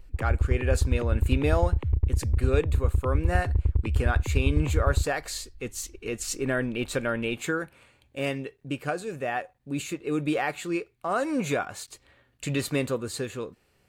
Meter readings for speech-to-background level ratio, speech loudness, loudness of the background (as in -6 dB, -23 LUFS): -3.5 dB, -30.5 LUFS, -27.0 LUFS